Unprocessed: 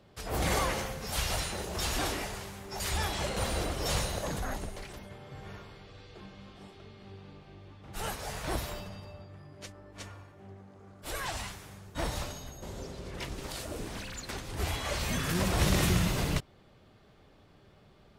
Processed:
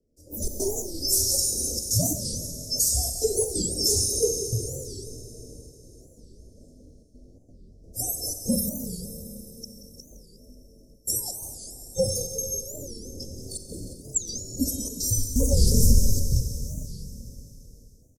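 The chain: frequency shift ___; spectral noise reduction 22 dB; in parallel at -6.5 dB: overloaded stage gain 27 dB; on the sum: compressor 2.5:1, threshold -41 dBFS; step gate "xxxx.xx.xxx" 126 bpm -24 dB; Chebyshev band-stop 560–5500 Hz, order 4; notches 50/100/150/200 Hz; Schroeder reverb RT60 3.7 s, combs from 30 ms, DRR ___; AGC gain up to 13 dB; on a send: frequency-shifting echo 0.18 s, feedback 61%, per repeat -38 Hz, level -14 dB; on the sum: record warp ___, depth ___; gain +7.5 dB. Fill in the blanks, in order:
-140 Hz, 6.5 dB, 45 rpm, 250 cents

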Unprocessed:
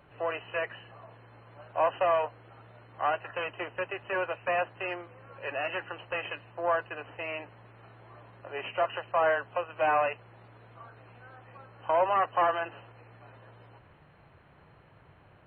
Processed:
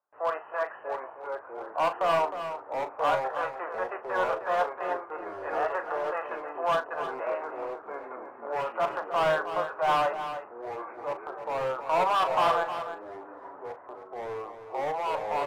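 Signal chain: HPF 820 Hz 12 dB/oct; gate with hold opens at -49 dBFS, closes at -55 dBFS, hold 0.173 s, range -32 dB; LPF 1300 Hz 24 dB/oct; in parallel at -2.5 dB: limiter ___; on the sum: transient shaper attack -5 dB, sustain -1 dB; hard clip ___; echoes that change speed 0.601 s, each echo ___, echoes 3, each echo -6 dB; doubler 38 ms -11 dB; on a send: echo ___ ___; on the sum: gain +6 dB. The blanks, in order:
-29.5 dBFS, -27.5 dBFS, -3 st, 0.311 s, -10 dB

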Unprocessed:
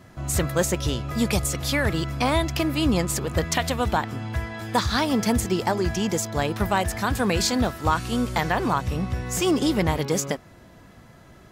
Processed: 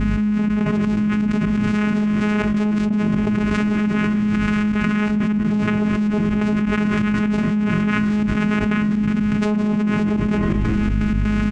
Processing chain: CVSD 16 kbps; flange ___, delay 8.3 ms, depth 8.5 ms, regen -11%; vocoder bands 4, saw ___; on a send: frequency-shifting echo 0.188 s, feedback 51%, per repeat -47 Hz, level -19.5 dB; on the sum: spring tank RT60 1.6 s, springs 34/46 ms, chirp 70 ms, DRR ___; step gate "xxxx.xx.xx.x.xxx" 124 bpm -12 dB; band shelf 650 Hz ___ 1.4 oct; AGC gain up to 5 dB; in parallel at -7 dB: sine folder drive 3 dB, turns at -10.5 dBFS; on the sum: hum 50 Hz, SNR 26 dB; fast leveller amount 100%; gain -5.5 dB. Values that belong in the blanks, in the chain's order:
1.3 Hz, 210 Hz, 10 dB, -12.5 dB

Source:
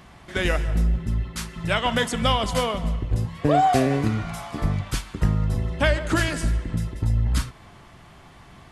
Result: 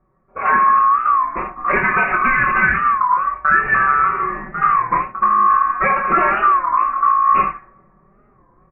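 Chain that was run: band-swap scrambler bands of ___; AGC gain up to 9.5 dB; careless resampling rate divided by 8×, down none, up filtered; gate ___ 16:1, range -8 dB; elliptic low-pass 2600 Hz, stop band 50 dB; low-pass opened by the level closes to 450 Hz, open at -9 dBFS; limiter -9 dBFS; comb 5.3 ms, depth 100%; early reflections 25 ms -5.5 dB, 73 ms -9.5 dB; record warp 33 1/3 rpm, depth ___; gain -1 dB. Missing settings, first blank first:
1000 Hz, -29 dBFS, 160 cents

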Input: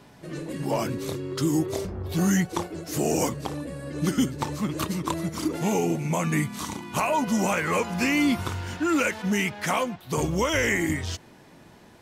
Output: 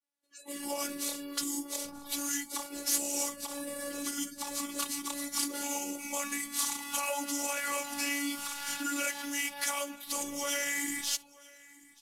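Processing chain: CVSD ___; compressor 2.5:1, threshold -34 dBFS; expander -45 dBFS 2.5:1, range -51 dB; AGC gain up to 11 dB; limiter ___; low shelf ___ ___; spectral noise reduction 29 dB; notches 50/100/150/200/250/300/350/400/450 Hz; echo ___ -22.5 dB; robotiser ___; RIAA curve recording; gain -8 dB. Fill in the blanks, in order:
64 kbps, -15 dBFS, 170 Hz, +4 dB, 0.931 s, 284 Hz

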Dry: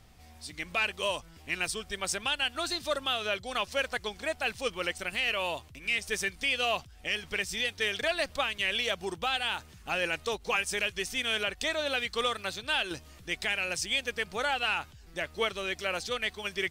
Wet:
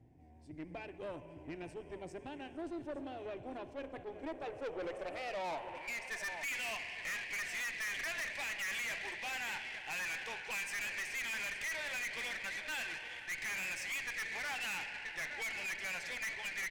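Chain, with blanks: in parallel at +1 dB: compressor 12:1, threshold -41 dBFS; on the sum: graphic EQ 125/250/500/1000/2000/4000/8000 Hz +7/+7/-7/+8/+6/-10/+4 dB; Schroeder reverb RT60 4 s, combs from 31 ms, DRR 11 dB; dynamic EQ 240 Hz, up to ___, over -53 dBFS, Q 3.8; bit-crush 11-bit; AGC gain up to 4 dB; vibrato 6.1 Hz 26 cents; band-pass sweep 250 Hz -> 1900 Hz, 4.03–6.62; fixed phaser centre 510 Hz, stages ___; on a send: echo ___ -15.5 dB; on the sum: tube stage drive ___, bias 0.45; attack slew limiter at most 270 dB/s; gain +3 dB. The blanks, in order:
-4 dB, 4, 0.865 s, 40 dB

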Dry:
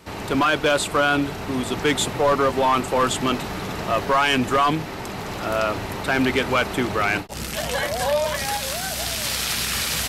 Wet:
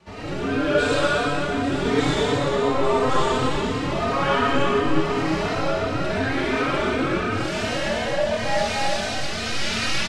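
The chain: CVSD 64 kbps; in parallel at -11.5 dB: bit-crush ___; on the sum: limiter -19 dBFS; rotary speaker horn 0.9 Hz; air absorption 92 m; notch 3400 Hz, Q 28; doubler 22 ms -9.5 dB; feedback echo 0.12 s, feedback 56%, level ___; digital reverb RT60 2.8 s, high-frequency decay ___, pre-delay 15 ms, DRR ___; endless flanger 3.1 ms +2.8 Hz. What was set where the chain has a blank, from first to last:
6-bit, -5 dB, 0.95×, -8 dB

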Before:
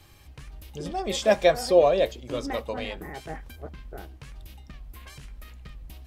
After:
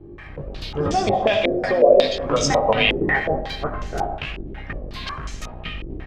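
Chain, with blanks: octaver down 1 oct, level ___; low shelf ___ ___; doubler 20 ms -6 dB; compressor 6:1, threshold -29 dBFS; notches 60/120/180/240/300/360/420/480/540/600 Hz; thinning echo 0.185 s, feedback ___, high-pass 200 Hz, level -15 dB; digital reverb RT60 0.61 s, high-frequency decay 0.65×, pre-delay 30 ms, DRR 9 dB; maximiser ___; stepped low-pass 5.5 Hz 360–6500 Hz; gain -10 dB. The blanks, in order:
0 dB, 270 Hz, -6 dB, 65%, +23 dB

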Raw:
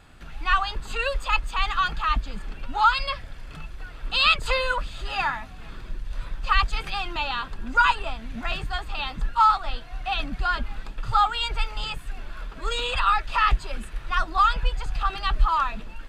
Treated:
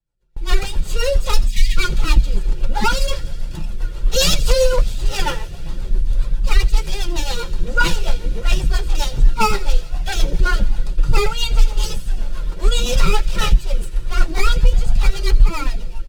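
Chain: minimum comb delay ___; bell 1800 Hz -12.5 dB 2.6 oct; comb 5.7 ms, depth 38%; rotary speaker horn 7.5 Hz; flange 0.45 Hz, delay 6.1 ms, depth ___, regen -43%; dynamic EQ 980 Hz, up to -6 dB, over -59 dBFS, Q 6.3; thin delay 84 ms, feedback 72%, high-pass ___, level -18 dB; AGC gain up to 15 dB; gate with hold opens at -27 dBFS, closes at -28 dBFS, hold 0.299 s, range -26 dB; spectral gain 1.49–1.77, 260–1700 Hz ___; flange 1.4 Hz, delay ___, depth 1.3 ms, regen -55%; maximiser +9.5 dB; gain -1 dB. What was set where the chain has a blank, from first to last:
2.1 ms, 6.7 ms, 2500 Hz, -29 dB, 1 ms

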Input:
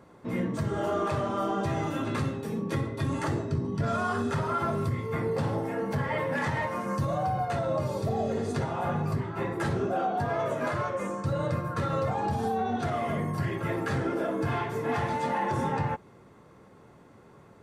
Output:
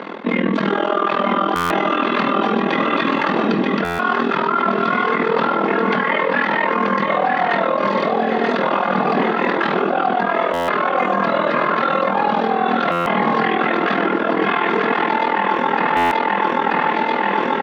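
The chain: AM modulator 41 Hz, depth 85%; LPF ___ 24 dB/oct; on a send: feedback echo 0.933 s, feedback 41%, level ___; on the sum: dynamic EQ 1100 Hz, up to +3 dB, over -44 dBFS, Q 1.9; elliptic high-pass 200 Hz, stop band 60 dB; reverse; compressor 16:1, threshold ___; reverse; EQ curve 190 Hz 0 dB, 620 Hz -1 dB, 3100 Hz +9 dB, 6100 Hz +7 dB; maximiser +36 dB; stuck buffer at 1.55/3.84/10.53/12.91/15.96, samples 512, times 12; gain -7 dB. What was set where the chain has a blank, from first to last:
3500 Hz, -6 dB, -41 dBFS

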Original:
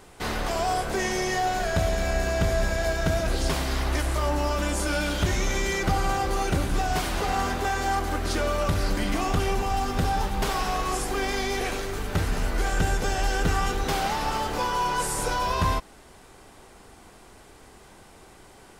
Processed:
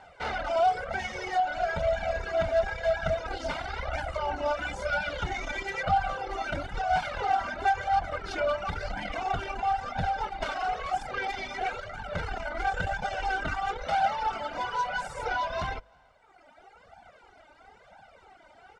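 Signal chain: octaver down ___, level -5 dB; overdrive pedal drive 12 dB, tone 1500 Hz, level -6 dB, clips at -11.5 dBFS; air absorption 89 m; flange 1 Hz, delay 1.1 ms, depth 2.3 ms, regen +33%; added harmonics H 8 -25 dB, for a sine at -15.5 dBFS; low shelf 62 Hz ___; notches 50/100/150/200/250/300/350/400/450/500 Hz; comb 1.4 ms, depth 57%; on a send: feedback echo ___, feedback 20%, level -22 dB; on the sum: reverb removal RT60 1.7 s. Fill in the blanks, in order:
2 oct, -9 dB, 0.331 s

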